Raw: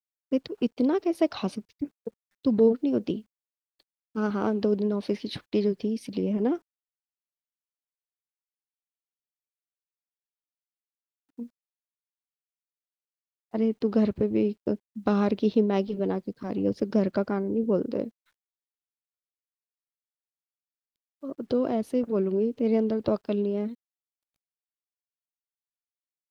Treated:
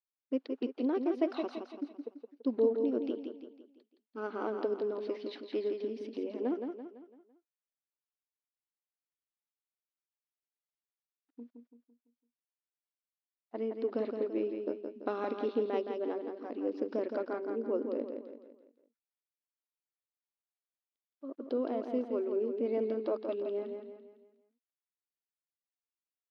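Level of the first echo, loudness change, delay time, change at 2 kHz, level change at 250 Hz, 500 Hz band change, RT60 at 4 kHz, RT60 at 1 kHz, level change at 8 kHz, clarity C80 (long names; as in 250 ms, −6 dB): −6.0 dB, −8.0 dB, 168 ms, −7.0 dB, −10.5 dB, −6.0 dB, no reverb audible, no reverb audible, can't be measured, no reverb audible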